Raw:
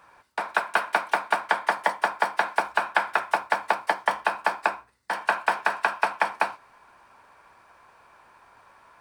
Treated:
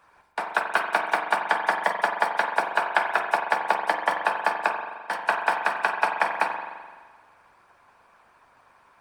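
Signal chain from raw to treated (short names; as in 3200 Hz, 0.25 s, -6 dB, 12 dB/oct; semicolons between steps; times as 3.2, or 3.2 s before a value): harmonic-percussive split harmonic -11 dB; spring tank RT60 1.5 s, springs 42 ms, chirp 55 ms, DRR 4.5 dB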